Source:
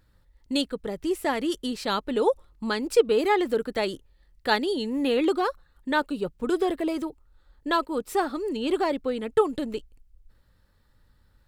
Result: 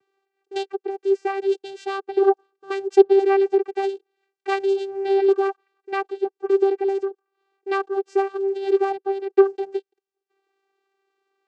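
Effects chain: vocoder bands 8, saw 391 Hz; gain +5.5 dB

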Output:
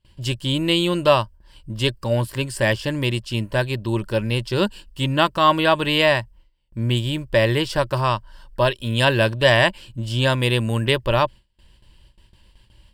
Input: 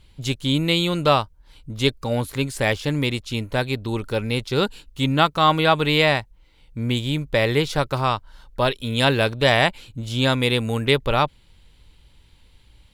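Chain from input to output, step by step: gate with hold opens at -42 dBFS; ripple EQ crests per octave 1.3, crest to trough 9 dB

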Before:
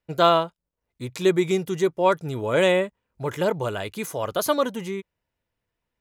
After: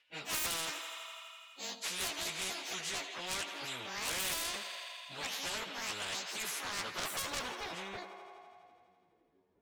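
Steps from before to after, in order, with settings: trilling pitch shifter +10.5 st, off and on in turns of 0.142 s; band-pass sweep 2900 Hz -> 370 Hz, 3.85–5.33; dynamic EQ 610 Hz, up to +3 dB, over -49 dBFS, Q 1.2; in parallel at -6 dB: hard clip -27 dBFS, distortion -7 dB; on the sum: plain phase-vocoder stretch 1.6×; soft clip -29 dBFS, distortion -7 dB; on a send: thinning echo 83 ms, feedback 77%, high-pass 310 Hz, level -21.5 dB; on the sum: spectral compressor 4:1; gain +7 dB

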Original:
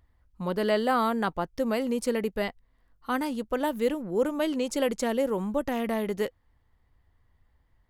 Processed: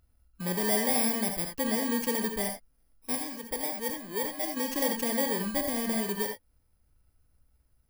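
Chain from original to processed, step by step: FFT order left unsorted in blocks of 32 samples; 3.15–4.57 harmonic-percussive split harmonic -8 dB; non-linear reverb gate 0.1 s rising, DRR 4.5 dB; gain -3 dB

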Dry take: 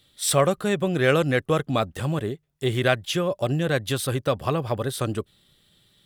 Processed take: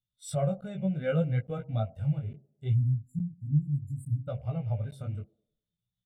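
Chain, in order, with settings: rattling part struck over -34 dBFS, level -27 dBFS; low shelf 310 Hz +4 dB; de-hum 67.21 Hz, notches 16; chorus 0.67 Hz, delay 16.5 ms, depth 4.7 ms; tone controls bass +4 dB, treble 0 dB; comb 1.4 ms, depth 61%; band-limited delay 0.102 s, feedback 56%, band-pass 410 Hz, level -15 dB; spectral delete 2.74–4.28, 330–7000 Hz; crackling interface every 0.86 s, samples 512, zero, from 0.61; spectral expander 1.5:1; gain -8 dB

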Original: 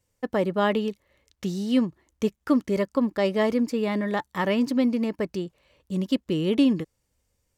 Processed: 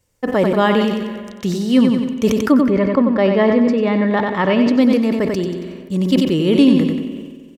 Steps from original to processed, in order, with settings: 2.51–4.73 LPF 2300 Hz -> 3900 Hz 12 dB/oct; feedback echo 92 ms, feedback 40%, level -7.5 dB; on a send at -18 dB: reverb RT60 3.0 s, pre-delay 31 ms; on the sum: sustainer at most 39 dB/s; gain +7.5 dB

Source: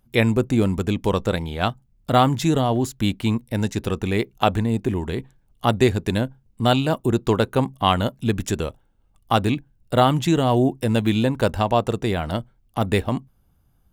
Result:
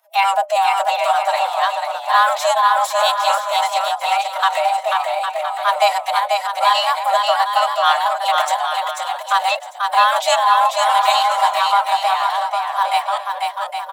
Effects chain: frequency shift +340 Hz; formant-preserving pitch shift +9.5 st; bouncing-ball echo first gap 0.49 s, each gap 0.65×, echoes 5; gain +2.5 dB

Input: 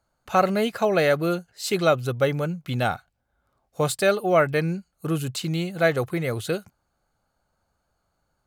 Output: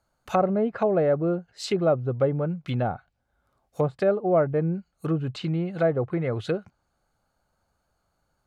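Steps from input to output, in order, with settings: treble ducked by the level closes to 760 Hz, closed at -20 dBFS; 5.07–5.69 high shelf 5600 Hz -7.5 dB

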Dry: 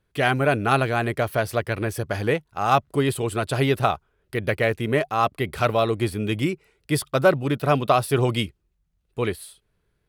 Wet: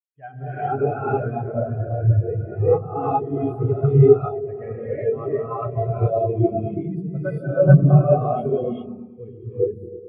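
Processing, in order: phaser 0.54 Hz, delay 4.8 ms, feedback 35%; short-mantissa float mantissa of 2-bit; repeats that get brighter 0.107 s, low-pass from 200 Hz, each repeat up 1 oct, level 0 dB; non-linear reverb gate 0.45 s rising, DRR -7 dB; spectral expander 2.5:1; gain -3.5 dB

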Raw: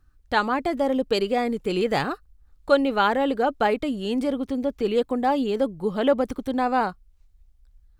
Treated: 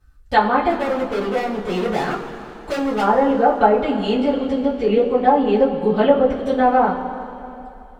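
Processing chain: treble ducked by the level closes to 1000 Hz, closed at -16.5 dBFS; 0.69–3.01 overloaded stage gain 26 dB; two-slope reverb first 0.21 s, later 2.9 s, from -18 dB, DRR -10 dB; gain -2.5 dB

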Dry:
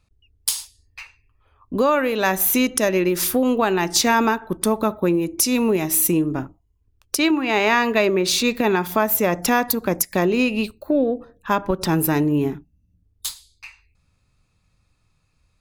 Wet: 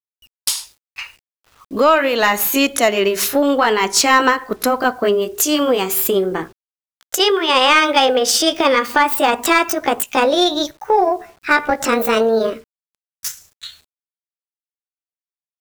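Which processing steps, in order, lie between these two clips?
gliding pitch shift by +9 st starting unshifted; overdrive pedal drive 10 dB, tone 5600 Hz, clips at -3.5 dBFS; bit-crush 9-bit; gain +3.5 dB

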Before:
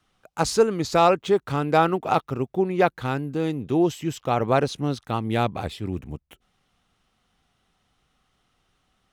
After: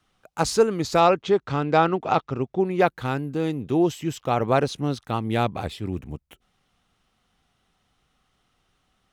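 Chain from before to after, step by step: 1–2.6 LPF 6600 Hz 24 dB/oct

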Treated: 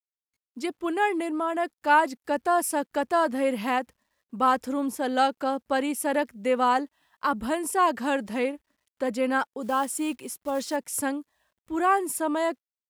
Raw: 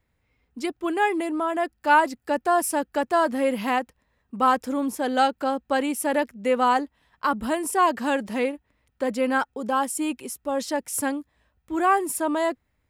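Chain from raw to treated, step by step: 9.62–10.78 block floating point 5-bit; spectral noise reduction 17 dB; bit-crush 12-bit; gain -2 dB

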